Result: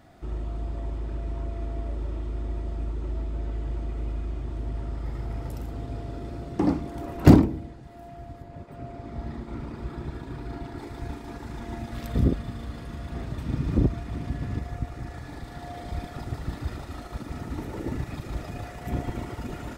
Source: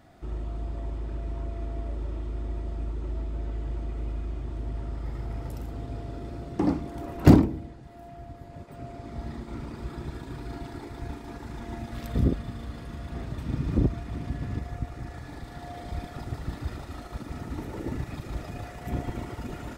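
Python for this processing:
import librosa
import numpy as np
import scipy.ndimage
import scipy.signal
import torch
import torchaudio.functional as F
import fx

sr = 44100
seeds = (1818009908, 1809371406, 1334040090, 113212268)

y = fx.high_shelf(x, sr, hz=4100.0, db=-8.0, at=(8.42, 10.78))
y = y * 10.0 ** (1.5 / 20.0)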